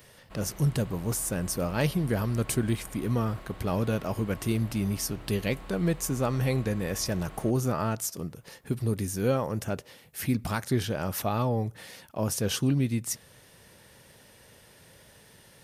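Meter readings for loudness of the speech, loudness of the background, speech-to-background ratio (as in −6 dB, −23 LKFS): −29.5 LKFS, −47.0 LKFS, 17.5 dB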